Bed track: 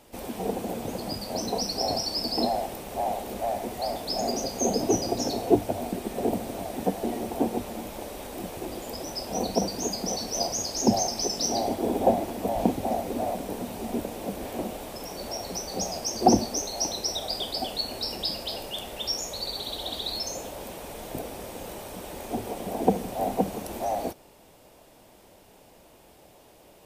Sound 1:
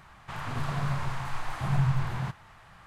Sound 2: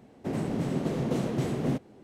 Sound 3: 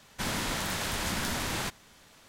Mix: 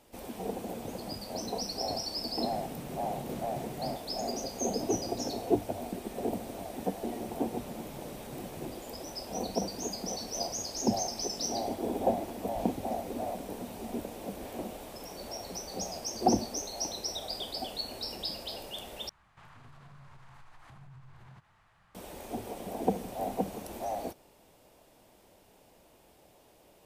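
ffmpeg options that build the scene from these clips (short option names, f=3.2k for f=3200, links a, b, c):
-filter_complex "[2:a]asplit=2[a][b];[0:a]volume=-6.5dB[c];[1:a]acompressor=threshold=-34dB:ratio=10:attack=0.24:release=107:knee=1:detection=rms[d];[c]asplit=2[e][f];[e]atrim=end=19.094[g];[d]atrim=end=2.86,asetpts=PTS-STARTPTS,volume=-12.5dB[h];[f]atrim=start=21.946[i];[a]atrim=end=2.03,asetpts=PTS-STARTPTS,volume=-12.5dB,afade=t=in:d=0.004:c=hsin,afade=t=out:st=2.026:d=0.004:c=hsin,adelay=2180[j];[b]atrim=end=2.03,asetpts=PTS-STARTPTS,volume=-18dB,afade=t=in:d=0.004:c=hsin,afade=t=out:st=2.026:d=0.004:c=hsin,adelay=6940[k];[g][h]acrossfade=d=0.004:c1=hsin:c2=hsin[l];[l][i]acrossfade=d=0.004:c1=hsin:c2=hsin[m];[m][j][k]amix=inputs=3:normalize=0"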